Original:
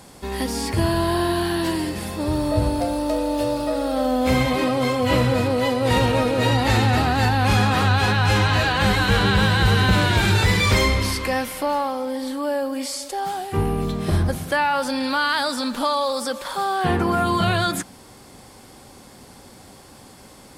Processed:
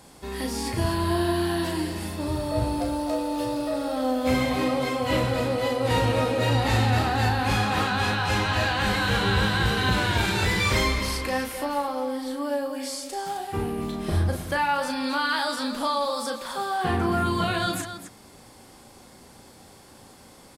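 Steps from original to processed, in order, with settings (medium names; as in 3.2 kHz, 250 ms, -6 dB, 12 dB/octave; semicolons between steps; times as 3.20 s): hum notches 50/100/150/200/250 Hz; loudspeakers at several distances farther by 12 m -5 dB, 90 m -10 dB; trim -5.5 dB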